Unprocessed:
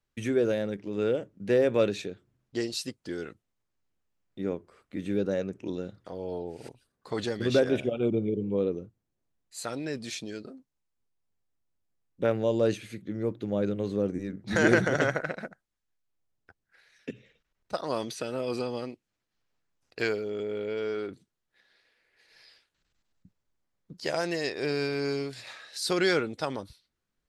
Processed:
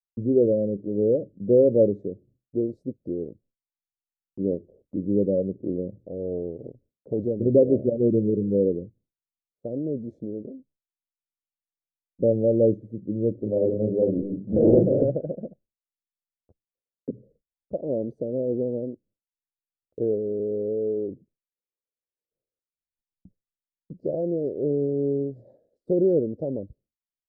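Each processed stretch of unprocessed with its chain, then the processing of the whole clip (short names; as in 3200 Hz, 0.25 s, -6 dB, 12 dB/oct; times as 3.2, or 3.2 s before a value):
13.34–15.03 notches 50/100/150/200/250/300/350 Hz + doubler 37 ms -2.5 dB + Doppler distortion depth 0.57 ms
whole clip: elliptic low-pass 570 Hz, stop band 50 dB; expander -59 dBFS; gain +6.5 dB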